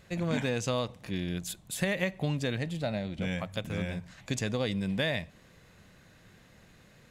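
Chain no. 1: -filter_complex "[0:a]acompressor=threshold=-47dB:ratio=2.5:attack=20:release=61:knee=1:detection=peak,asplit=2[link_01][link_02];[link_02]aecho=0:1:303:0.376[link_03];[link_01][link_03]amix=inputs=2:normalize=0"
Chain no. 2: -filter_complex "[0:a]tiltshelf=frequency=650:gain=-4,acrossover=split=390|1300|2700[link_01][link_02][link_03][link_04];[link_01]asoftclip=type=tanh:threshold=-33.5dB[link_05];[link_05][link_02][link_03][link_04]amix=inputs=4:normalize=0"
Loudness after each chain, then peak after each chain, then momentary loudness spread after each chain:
−42.0, −33.0 LKFS; −23.5, −14.0 dBFS; 16, 7 LU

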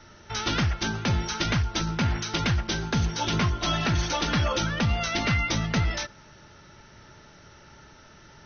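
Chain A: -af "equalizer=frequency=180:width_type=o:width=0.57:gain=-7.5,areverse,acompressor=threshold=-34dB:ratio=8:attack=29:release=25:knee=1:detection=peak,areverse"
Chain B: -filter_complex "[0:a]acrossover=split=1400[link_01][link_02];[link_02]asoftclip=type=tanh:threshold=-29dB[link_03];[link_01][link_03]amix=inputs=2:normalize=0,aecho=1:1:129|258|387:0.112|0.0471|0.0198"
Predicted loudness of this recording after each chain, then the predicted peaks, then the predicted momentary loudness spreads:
−32.0, −27.0 LKFS; −20.0, −15.5 dBFS; 20, 3 LU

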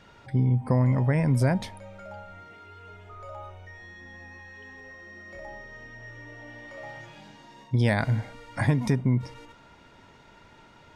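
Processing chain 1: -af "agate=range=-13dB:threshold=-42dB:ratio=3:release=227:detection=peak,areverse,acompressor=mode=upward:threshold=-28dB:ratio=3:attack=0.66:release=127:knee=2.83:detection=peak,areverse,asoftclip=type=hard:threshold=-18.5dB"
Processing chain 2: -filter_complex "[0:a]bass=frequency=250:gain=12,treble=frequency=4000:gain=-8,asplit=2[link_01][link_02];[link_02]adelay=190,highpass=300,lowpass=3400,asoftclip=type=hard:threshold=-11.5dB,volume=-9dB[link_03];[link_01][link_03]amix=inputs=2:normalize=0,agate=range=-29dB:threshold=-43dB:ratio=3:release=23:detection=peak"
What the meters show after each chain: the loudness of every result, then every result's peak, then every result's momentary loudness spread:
−30.0, −15.5 LKFS; −18.5, −3.0 dBFS; 20, 8 LU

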